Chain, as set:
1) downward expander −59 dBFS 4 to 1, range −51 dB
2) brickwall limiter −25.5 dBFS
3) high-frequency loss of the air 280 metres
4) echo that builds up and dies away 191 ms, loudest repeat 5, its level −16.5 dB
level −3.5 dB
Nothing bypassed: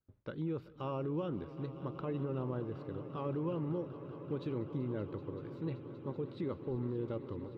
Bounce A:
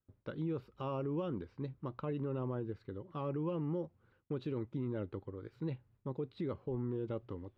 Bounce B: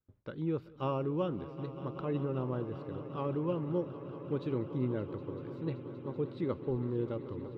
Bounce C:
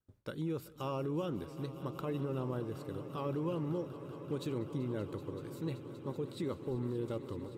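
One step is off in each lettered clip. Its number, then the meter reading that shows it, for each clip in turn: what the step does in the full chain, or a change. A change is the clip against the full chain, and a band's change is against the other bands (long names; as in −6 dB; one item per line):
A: 4, echo-to-direct ratio −7.0 dB to none audible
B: 2, average gain reduction 1.5 dB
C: 3, 4 kHz band +6.0 dB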